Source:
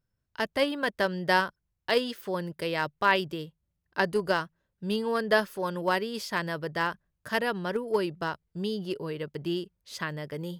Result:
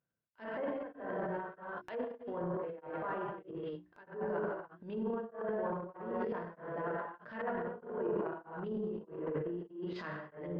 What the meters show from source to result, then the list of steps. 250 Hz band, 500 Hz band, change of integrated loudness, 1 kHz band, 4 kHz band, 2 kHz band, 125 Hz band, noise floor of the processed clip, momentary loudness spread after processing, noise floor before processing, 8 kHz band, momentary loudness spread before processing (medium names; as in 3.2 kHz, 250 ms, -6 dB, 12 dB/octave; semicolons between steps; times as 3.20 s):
-7.5 dB, -7.5 dB, -10.0 dB, -11.0 dB, under -25 dB, -17.0 dB, -8.5 dB, -67 dBFS, 7 LU, -81 dBFS, under -30 dB, 11 LU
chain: bass shelf 200 Hz -10 dB; hum notches 60/120/180/240/300/360 Hz; peak limiter -20 dBFS, peak gain reduction 11.5 dB; tape spacing loss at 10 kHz 40 dB; gated-style reverb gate 330 ms flat, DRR -6.5 dB; low-pass that closes with the level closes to 1.2 kHz, closed at -29.5 dBFS; compression 2:1, threshold -37 dBFS, peak gain reduction 8.5 dB; high-pass 120 Hz; transient shaper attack -9 dB, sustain +10 dB; tremolo of two beating tones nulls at 1.6 Hz